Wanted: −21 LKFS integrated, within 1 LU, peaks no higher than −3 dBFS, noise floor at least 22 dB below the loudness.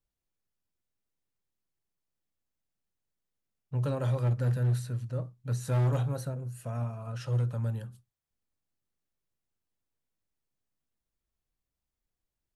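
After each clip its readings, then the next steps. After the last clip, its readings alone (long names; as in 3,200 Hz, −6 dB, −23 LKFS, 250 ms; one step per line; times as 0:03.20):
share of clipped samples 0.9%; peaks flattened at −22.5 dBFS; integrated loudness −31.5 LKFS; sample peak −22.5 dBFS; target loudness −21.0 LKFS
→ clipped peaks rebuilt −22.5 dBFS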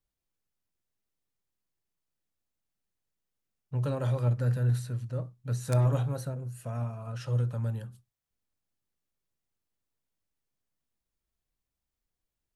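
share of clipped samples 0.0%; integrated loudness −31.0 LKFS; sample peak −13.5 dBFS; target loudness −21.0 LKFS
→ level +10 dB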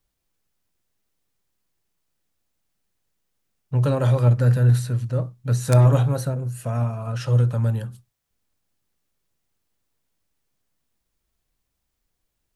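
integrated loudness −21.0 LKFS; sample peak −3.5 dBFS; background noise floor −78 dBFS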